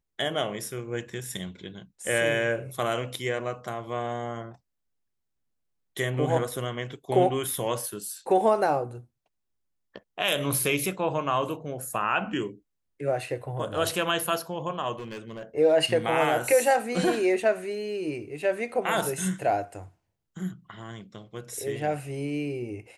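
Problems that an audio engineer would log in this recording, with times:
14.99–15.43 clipped -33 dBFS

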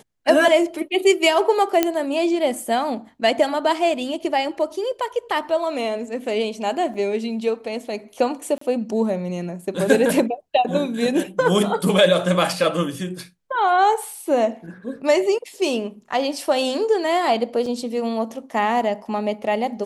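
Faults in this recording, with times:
1.83 pop -3 dBFS
6.94 gap 3.5 ms
8.58–8.61 gap 34 ms
17.66 gap 4 ms

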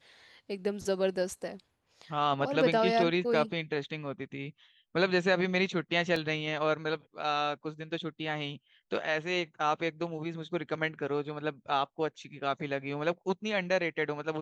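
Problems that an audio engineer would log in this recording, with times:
6.16 gap 2.9 ms

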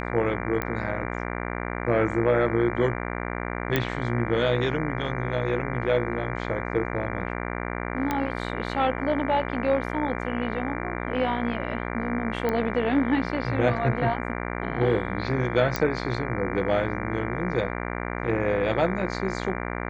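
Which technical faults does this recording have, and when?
buzz 60 Hz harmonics 39 -31 dBFS
0.62 pop -13 dBFS
3.76 pop -9 dBFS
8.11 pop -12 dBFS
12.49 pop -14 dBFS
15.76 pop -10 dBFS

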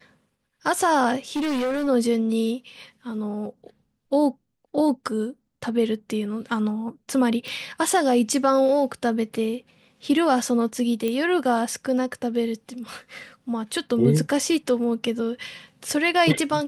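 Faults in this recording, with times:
1.36–1.88 clipped -22 dBFS
7.48 pop
11.08 pop -14 dBFS

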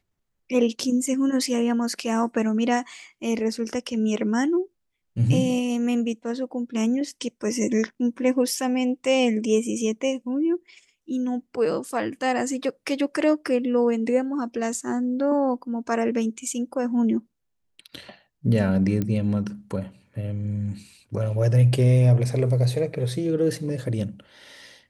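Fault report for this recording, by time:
19.02 pop -14 dBFS

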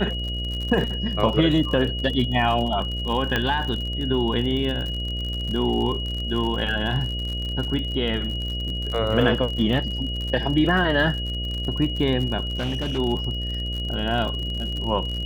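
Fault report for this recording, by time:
buzz 60 Hz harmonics 11 -29 dBFS
crackle 56/s -29 dBFS
tone 2900 Hz -30 dBFS
3.36 pop -9 dBFS
12.51–12.99 clipped -22 dBFS

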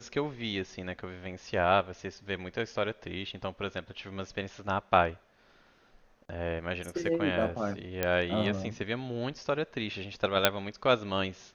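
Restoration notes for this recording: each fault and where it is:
8.03 pop -13 dBFS
10.45 pop -4 dBFS

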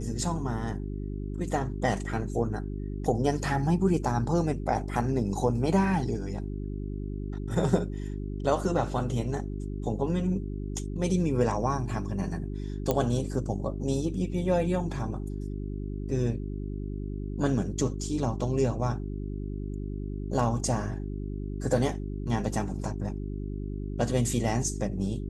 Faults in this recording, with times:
hum 50 Hz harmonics 8 -34 dBFS
12.91 pop -12 dBFS

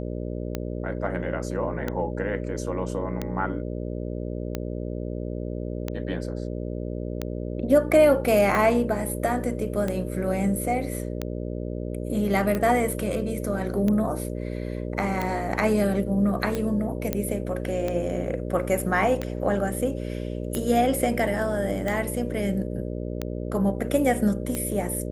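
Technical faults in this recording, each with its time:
buzz 60 Hz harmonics 10 -31 dBFS
tick 45 rpm -14 dBFS
17.13 pop -10 dBFS

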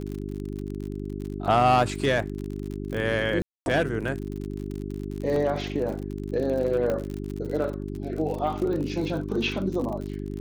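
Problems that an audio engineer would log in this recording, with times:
crackle 53/s -32 dBFS
hum 50 Hz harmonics 8 -33 dBFS
3.42–3.66 gap 0.241 s
5.36 gap 2.5 ms
6.9 pop -16 dBFS

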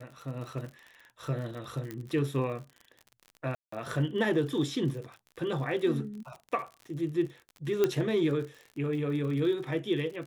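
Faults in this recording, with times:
crackle 54/s -39 dBFS
1.91 pop -23 dBFS
3.55–3.72 gap 0.174 s
7.84 pop -12 dBFS

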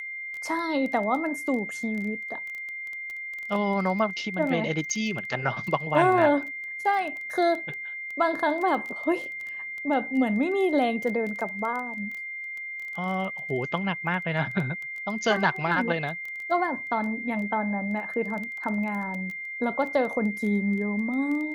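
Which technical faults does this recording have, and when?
crackle 13/s -31 dBFS
tone 2100 Hz -33 dBFS

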